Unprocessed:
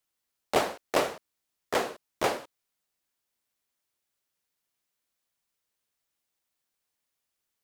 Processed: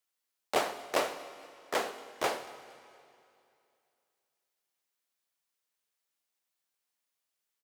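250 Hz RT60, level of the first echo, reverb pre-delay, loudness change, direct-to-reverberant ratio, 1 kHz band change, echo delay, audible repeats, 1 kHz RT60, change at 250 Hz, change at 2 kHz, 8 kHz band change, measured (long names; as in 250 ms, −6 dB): 2.5 s, −24.0 dB, 21 ms, −3.5 dB, 11.5 dB, −3.0 dB, 232 ms, 2, 2.6 s, −6.5 dB, −2.5 dB, −2.5 dB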